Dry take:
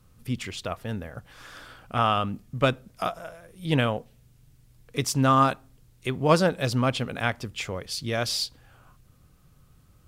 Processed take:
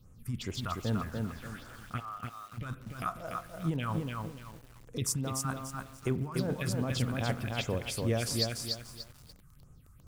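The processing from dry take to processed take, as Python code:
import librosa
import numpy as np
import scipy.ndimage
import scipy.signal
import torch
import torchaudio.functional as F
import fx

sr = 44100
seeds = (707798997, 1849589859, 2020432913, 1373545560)

y = fx.over_compress(x, sr, threshold_db=-27.0, ratio=-1.0)
y = fx.auto_wah(y, sr, base_hz=650.0, top_hz=1400.0, q=6.8, full_db=-22.5, direction='up', at=(1.99, 2.57), fade=0.02)
y = fx.phaser_stages(y, sr, stages=4, low_hz=470.0, high_hz=4100.0, hz=2.5, feedback_pct=45)
y = fx.rev_spring(y, sr, rt60_s=1.2, pass_ms=(36,), chirp_ms=30, drr_db=15.5)
y = fx.echo_crushed(y, sr, ms=292, feedback_pct=35, bits=8, wet_db=-3)
y = y * 10.0 ** (-5.0 / 20.0)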